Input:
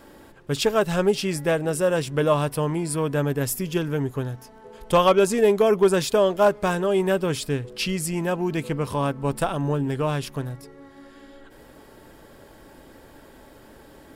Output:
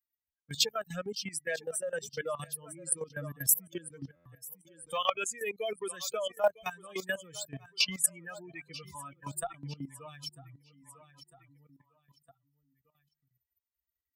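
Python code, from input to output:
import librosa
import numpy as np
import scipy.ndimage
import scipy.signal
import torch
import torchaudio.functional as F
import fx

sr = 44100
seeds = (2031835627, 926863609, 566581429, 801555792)

y = fx.bin_expand(x, sr, power=3.0)
y = fx.low_shelf(y, sr, hz=290.0, db=-11.0, at=(4.07, 6.3))
y = fx.hum_notches(y, sr, base_hz=50, count=3)
y = y + 0.44 * np.pad(y, (int(1.7 * sr / 1000.0), 0))[:len(y)]
y = fx.echo_feedback(y, sr, ms=951, feedback_pct=35, wet_db=-21)
y = fx.level_steps(y, sr, step_db=16)
y = fx.tilt_eq(y, sr, slope=4.0)
y = fx.buffer_glitch(y, sr, at_s=(4.15,), block=512, repeats=8)
y = fx.band_squash(y, sr, depth_pct=40)
y = F.gain(torch.from_numpy(y), 2.5).numpy()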